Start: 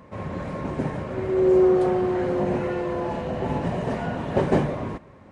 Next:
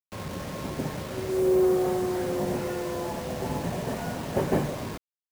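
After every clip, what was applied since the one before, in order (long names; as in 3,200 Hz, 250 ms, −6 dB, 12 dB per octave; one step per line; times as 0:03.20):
bit reduction 6 bits
level −4.5 dB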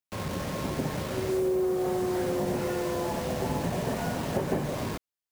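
downward compressor, threshold −27 dBFS, peak gain reduction 8 dB
level +2.5 dB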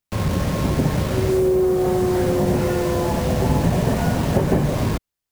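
low-shelf EQ 150 Hz +12 dB
level +7 dB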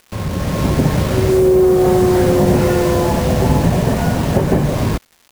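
automatic gain control
surface crackle 360 per second −35 dBFS
level −1 dB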